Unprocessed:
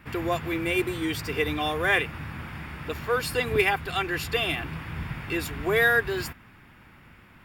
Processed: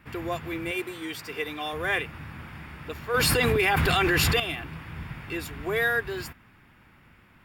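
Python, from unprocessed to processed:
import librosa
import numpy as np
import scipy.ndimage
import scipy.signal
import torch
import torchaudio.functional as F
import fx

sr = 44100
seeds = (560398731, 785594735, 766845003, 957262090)

y = fx.highpass(x, sr, hz=350.0, slope=6, at=(0.71, 1.73))
y = fx.env_flatten(y, sr, amount_pct=100, at=(3.14, 4.4))
y = F.gain(torch.from_numpy(y), -4.0).numpy()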